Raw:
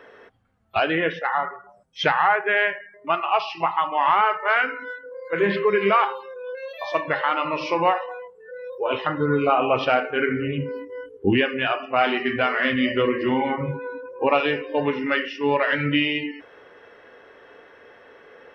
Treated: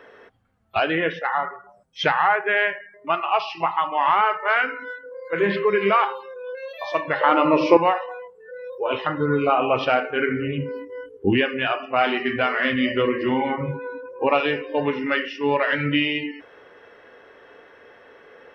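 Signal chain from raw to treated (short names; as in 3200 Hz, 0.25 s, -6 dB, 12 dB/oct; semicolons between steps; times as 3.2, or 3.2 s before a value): 7.21–7.77 bell 340 Hz +13 dB 2.5 oct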